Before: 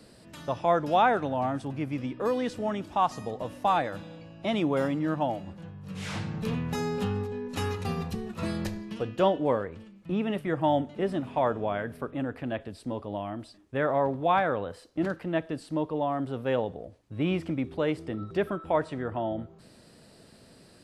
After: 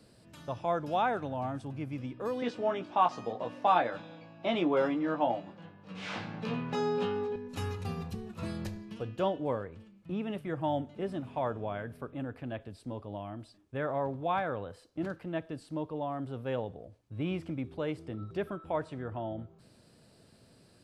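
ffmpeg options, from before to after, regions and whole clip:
-filter_complex "[0:a]asettb=1/sr,asplit=3[a][b][c];[a]atrim=end=2.424[d];[b]atrim=start=2.42:end=7.36,asetpts=PTS-STARTPTS,afade=t=in:d=0.004:c=qsin,afade=t=out:st=4.936:d=0.004:c=qsin,acontrast=47,highpass=270,lowpass=4.1k,asplit=2[e][f];[f]adelay=17,volume=-5dB[g];[e][g]amix=inputs=2:normalize=0,atrim=end_sample=217854[h];[c]atrim=start=7.356[i];[d][h]acrossfade=d=0.004:c1=hsin:c2=qsin[j];[j][i]acrossfade=d=0.004:c1=qsin:c2=hsin,equalizer=f=110:t=o:w=0.74:g=5.5,bandreject=f=1.9k:w=18,volume=-7dB"

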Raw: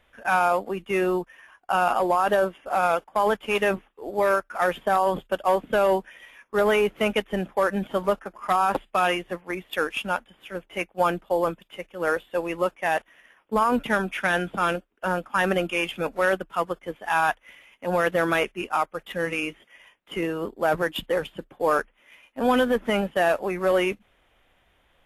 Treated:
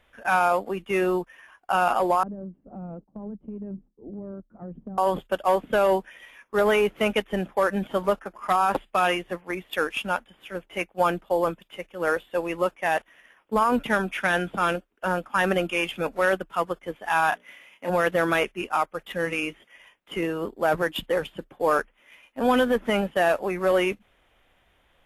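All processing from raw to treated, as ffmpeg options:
-filter_complex "[0:a]asettb=1/sr,asplit=3[a][b][c];[a]atrim=end=2.234[d];[b]atrim=start=2.23:end=4.98,asetpts=PTS-STARTPTS,afade=t=in:d=0.004:c=qsin,afade=t=out:st=2.746:d=0.004:c=qsin,lowpass=f=210:t=q:w=2.2,acompressor=threshold=-33dB:ratio=5:attack=3.2:release=140:knee=1:detection=peak[e];[c]atrim=start=4.976[f];[d][e]acrossfade=d=0.004:c1=hsin:c2=qsin[g];[g][f]acrossfade=d=0.004:c1=qsin:c2=hsin,asettb=1/sr,asplit=3[h][i][j];[h]atrim=end=17.294[k];[i]atrim=start=17.29:end=17.9,asetpts=PTS-STARTPTS,afade=t=in:d=0.004:c=qsin,afade=t=out:st=0.606:d=0.004:c=qsin,highpass=110,bandreject=f=60:t=h:w=6,bandreject=f=120:t=h:w=6,bandreject=f=180:t=h:w=6,bandreject=f=240:t=h:w=6,bandreject=f=300:t=h:w=6,bandreject=f=360:t=h:w=6,bandreject=f=420:t=h:w=6,bandreject=f=480:t=h:w=6,bandreject=f=540:t=h:w=6,bandreject=f=600:t=h:w=6,asplit=2[l][m];[m]adelay=29,volume=-4dB[n];[l][n]amix=inputs=2:normalize=0,atrim=end_sample=26901[o];[j]atrim=start=17.896[p];[k][o]acrossfade=d=0.004:c1=hsin:c2=qsin[q];[q][p]acrossfade=d=0.004:c1=qsin:c2=hsin"

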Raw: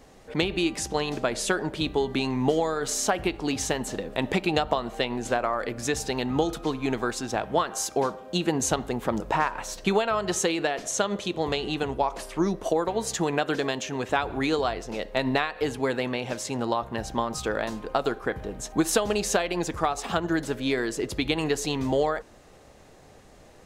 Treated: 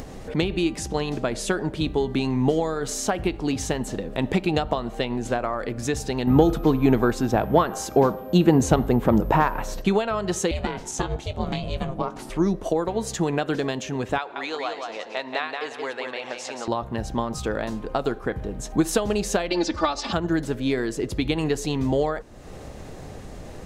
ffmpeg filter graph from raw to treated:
-filter_complex "[0:a]asettb=1/sr,asplit=3[a][b][c];[a]atrim=end=6.274[d];[b]atrim=start=6.27:end=9.82,asetpts=PTS-STARTPTS,afade=t=in:d=0.004:c=qsin,afade=t=out:st=3.546:d=0.004:c=qsin,aeval=exprs='val(0)+0.00355*sin(2*PI*13000*n/s)':c=same,highshelf=f=2.7k:g=-9.5,acontrast=68[e];[c]atrim=start=9.816[f];[d][e]acrossfade=d=0.004:c1=hsin:c2=qsin[g];[g][f]acrossfade=d=0.004:c1=qsin:c2=hsin,asettb=1/sr,asplit=3[h][i][j];[h]atrim=end=10.514[k];[i]atrim=start=10.51:end=12.3,asetpts=PTS-STARTPTS,afade=t=in:d=0.004:c=qsin,afade=t=out:st=1.786:d=0.004:c=qsin,asplit=2[l][m];[m]adelay=19,volume=-12dB[n];[l][n]amix=inputs=2:normalize=0,atrim=end_sample=78939,aeval=exprs='val(0)*sin(2*PI*260*n/s)':c=same[o];[j]atrim=start=12.296[p];[k][o]acrossfade=d=0.004:c1=hsin:c2=qsin[q];[q][p]acrossfade=d=0.004:c1=qsin:c2=hsin,asettb=1/sr,asplit=3[r][s][t];[r]atrim=end=14.184[u];[s]atrim=start=14.18:end=16.68,asetpts=PTS-STARTPTS,afade=t=in:d=0.004:c=qsin,afade=t=out:st=2.496:d=0.004:c=qsin,highpass=680,lowpass=6.2k,aecho=1:1:178|356|534:0.562|0.141|0.0351,atrim=end_sample=110250[v];[t]atrim=start=16.676[w];[u][v]acrossfade=d=0.004:c1=hsin:c2=qsin[x];[x][w]acrossfade=d=0.004:c1=qsin:c2=hsin,asettb=1/sr,asplit=3[y][z][aa];[y]atrim=end=19.504[ab];[z]atrim=start=19.5:end=20.13,asetpts=PTS-STARTPTS,afade=t=in:d=0.004:c=qsin,afade=t=out:st=0.626:d=0.004:c=qsin,lowpass=f=4.8k:t=q:w=3.3,lowshelf=f=99:g=-11,aecho=1:1:3.4:0.99,atrim=end_sample=27783[ac];[aa]atrim=start=20.126[ad];[ab][ac]acrossfade=d=0.004:c1=hsin:c2=qsin[ae];[ae][ad]acrossfade=d=0.004:c1=qsin:c2=hsin,lowshelf=f=340:g=9,acompressor=mode=upward:threshold=-25dB:ratio=2.5,volume=-2dB"

